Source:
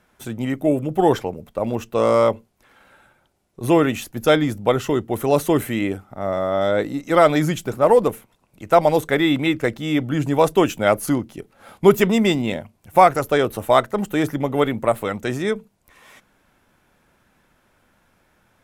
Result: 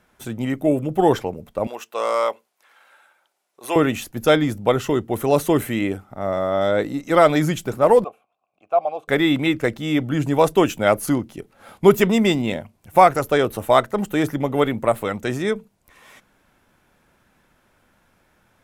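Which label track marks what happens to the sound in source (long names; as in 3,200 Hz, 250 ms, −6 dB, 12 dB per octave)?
1.670000	3.760000	high-pass filter 710 Hz
8.040000	9.080000	formant filter a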